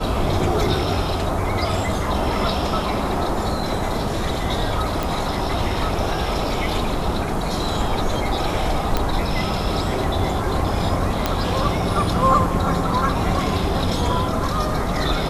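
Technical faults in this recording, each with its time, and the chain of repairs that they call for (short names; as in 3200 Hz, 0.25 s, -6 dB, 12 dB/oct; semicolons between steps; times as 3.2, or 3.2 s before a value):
5.03 pop
8.97 pop -6 dBFS
11.26 pop -4 dBFS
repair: de-click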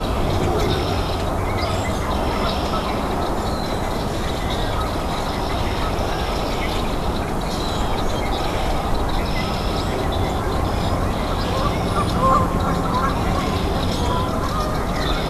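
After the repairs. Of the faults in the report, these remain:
none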